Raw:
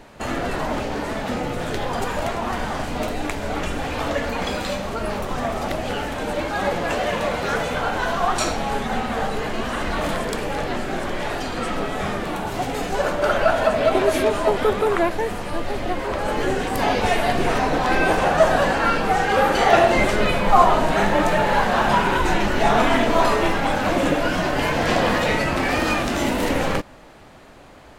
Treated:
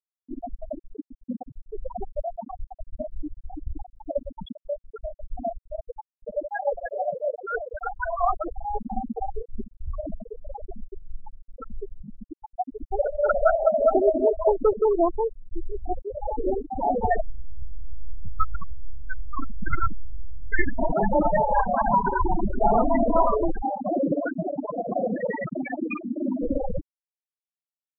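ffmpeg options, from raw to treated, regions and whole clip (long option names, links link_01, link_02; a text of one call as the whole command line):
ffmpeg -i in.wav -filter_complex "[0:a]asettb=1/sr,asplit=3[link_01][link_02][link_03];[link_01]atrim=end=17.214[link_04];[link_02]atrim=start=17.21:end=20.79,asetpts=PTS-STARTPTS,afade=type=in:duration=0.004:curve=qsin,afade=type=out:start_time=3.576:duration=0.004:curve=qsin,highpass=170,aeval=exprs='abs(val(0))':channel_layout=same[link_05];[link_03]atrim=start=20.786[link_06];[link_04][link_05]acrossfade=duration=0.004:curve1=hsin:curve2=qsin[link_07];[link_07][link_06]acrossfade=duration=0.004:curve1=qsin:curve2=hsin,asettb=1/sr,asplit=3[link_08][link_09][link_10];[link_08]atrim=end=23.624[link_11];[link_09]atrim=start=23.62:end=26.39,asetpts=PTS-STARTPTS,afade=type=in:duration=0.004:curve=qsin,afade=type=out:start_time=2.766:duration=0.004:curve=qsin,acrossover=split=3300[link_12][link_13];[link_13]acompressor=threshold=-48dB:ratio=4:attack=1:release=60[link_14];[link_12][link_14]amix=inputs=2:normalize=0,highpass=frequency=100:width=0.5412,highpass=frequency=100:width=1.3066,volume=16dB,asoftclip=hard,volume=-16dB[link_15];[link_10]atrim=start=26.386[link_16];[link_11][link_15]acrossfade=duration=0.004:curve1=hsin:curve2=qsin[link_17];[link_17][link_16]acrossfade=duration=0.004:curve1=qsin:curve2=hsin,acontrast=51,afftfilt=real='re*gte(hypot(re,im),0.794)':imag='im*gte(hypot(re,im),0.794)':win_size=1024:overlap=0.75,volume=-5dB" out.wav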